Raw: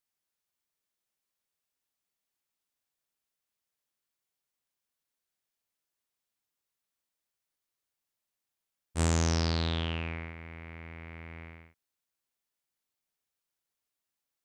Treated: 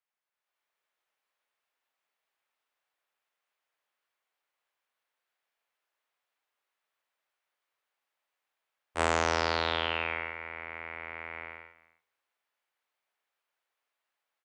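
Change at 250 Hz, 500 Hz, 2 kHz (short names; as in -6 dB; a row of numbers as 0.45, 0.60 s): -6.0, +5.5, +8.5 dB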